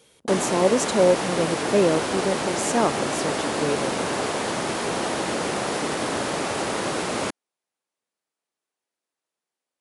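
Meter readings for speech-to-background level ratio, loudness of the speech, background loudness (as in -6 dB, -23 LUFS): 2.0 dB, -24.0 LUFS, -26.0 LUFS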